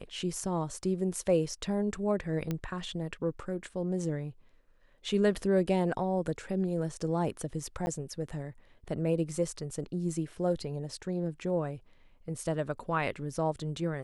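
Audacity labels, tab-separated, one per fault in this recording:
2.510000	2.510000	pop -19 dBFS
7.860000	7.870000	dropout 10 ms

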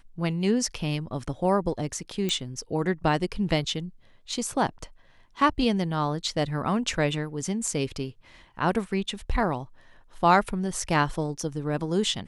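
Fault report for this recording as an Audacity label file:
2.290000	2.290000	pop -14 dBFS

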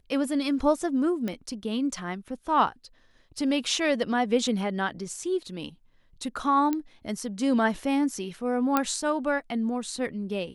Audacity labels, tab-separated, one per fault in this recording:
1.280000	1.280000	pop -18 dBFS
6.730000	6.730000	pop -15 dBFS
8.770000	8.770000	pop -9 dBFS

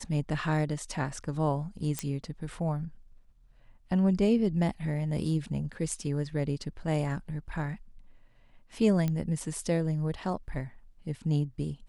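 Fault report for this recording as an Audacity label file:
1.990000	1.990000	pop -14 dBFS
9.080000	9.080000	pop -18 dBFS

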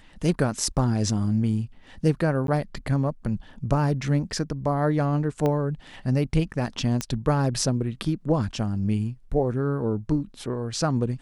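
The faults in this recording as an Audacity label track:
2.470000	2.480000	dropout
5.460000	5.460000	pop -14 dBFS
7.010000	7.010000	pop -12 dBFS

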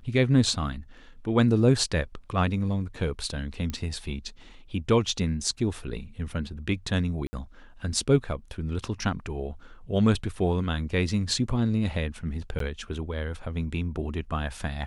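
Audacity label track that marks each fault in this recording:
3.700000	3.700000	pop -18 dBFS
7.270000	7.330000	dropout 60 ms
12.590000	12.600000	dropout 13 ms

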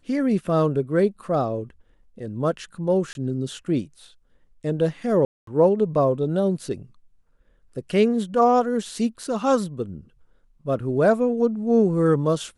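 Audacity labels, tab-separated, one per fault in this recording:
3.130000	3.150000	dropout 21 ms
5.250000	5.470000	dropout 223 ms

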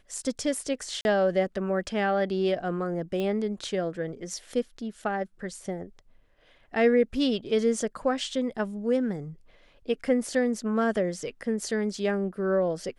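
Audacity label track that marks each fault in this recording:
1.010000	1.050000	dropout 41 ms
3.200000	3.200000	pop -20 dBFS

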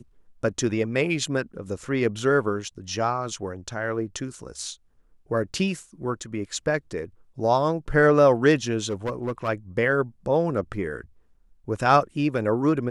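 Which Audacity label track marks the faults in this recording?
8.860000	9.490000	clipped -22.5 dBFS

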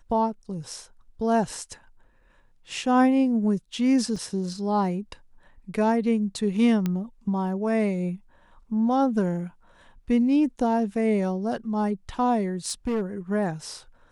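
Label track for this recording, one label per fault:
4.160000	4.160000	dropout 3.4 ms
6.860000	6.860000	pop -14 dBFS
12.660000	13.020000	clipped -21.5 dBFS

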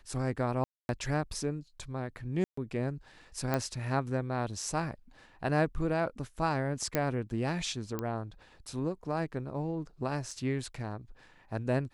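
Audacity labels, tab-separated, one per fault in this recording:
0.640000	0.890000	dropout 251 ms
2.440000	2.570000	dropout 134 ms
3.540000	3.540000	pop -16 dBFS
6.950000	6.950000	pop -13 dBFS
7.990000	7.990000	pop -20 dBFS
10.310000	10.310000	dropout 3.1 ms

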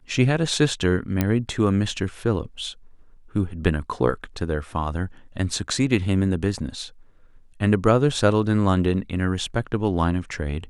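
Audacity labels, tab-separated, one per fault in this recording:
1.210000	1.210000	pop -7 dBFS

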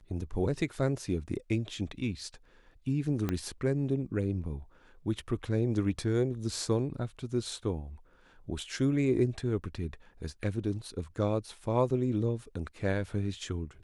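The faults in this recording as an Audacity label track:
3.290000	3.290000	pop -17 dBFS

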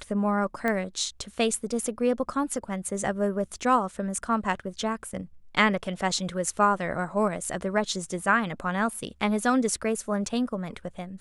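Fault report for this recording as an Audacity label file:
0.680000	0.680000	pop -15 dBFS

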